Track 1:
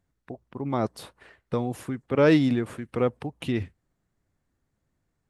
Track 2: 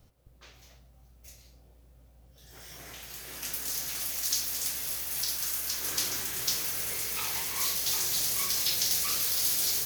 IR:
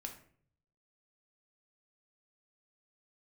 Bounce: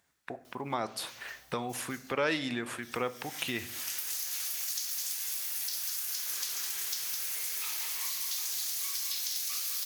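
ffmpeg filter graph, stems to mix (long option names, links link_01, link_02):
-filter_complex "[0:a]volume=1dB,asplit=3[link_01][link_02][link_03];[link_02]volume=-3dB[link_04];[1:a]acompressor=threshold=-40dB:ratio=2.5,adelay=450,volume=1.5dB,asplit=2[link_05][link_06];[link_06]volume=-6.5dB[link_07];[link_03]apad=whole_len=454655[link_08];[link_05][link_08]sidechaincompress=threshold=-28dB:ratio=8:attack=45:release=593[link_09];[2:a]atrim=start_sample=2205[link_10];[link_04][link_10]afir=irnorm=-1:irlink=0[link_11];[link_07]aecho=0:1:209:1[link_12];[link_01][link_09][link_11][link_12]amix=inputs=4:normalize=0,highpass=frequency=140:poles=1,tiltshelf=frequency=650:gain=-9,acompressor=threshold=-37dB:ratio=2"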